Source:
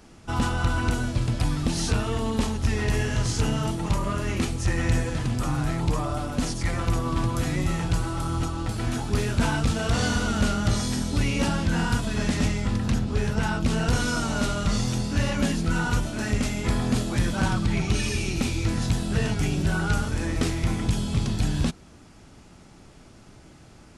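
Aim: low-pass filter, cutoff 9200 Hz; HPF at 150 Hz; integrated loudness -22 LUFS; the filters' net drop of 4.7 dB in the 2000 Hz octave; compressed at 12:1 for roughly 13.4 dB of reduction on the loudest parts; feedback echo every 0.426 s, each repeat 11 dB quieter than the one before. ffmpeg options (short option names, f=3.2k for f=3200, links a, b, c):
-af "highpass=150,lowpass=9.2k,equalizer=f=2k:t=o:g=-7,acompressor=threshold=-35dB:ratio=12,aecho=1:1:426|852|1278:0.282|0.0789|0.0221,volume=17dB"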